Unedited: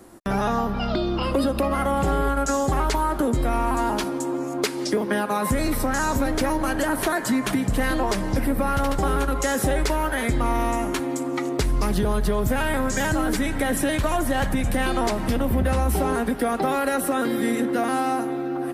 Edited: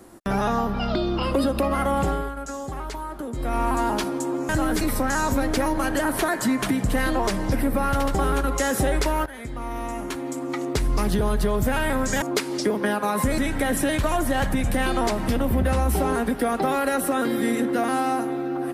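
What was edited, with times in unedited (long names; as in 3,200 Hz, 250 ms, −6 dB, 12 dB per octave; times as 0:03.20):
0:02.01–0:03.62: duck −10 dB, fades 0.30 s
0:04.49–0:05.65: swap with 0:13.06–0:13.38
0:10.10–0:11.83: fade in, from −15.5 dB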